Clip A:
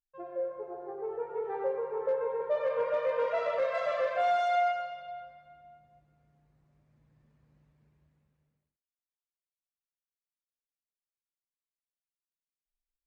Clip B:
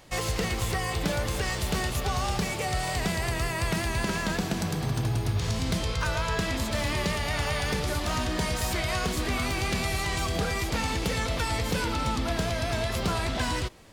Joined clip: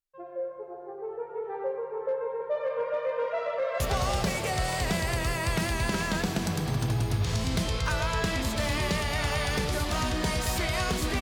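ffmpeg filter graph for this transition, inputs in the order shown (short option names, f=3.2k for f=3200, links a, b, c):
-filter_complex "[0:a]apad=whole_dur=11.21,atrim=end=11.21,atrim=end=3.802[a];[1:a]atrim=start=1.948:end=9.36[b];[a][b]acrossfade=d=0.004:c1=hsin:c2=hsin,asplit=2[c][d];[d]afade=t=in:st=3.49:d=0.01,afade=t=out:st=3.8:d=0.01,aecho=0:1:170|340|510|680|850|1020|1190|1360|1530|1700|1870|2040:0.501187|0.426009|0.362108|0.307792|0.261623|0.222379|0.189023|0.160669|0.136569|0.116083|0.0986709|0.0838703[e];[c][e]amix=inputs=2:normalize=0"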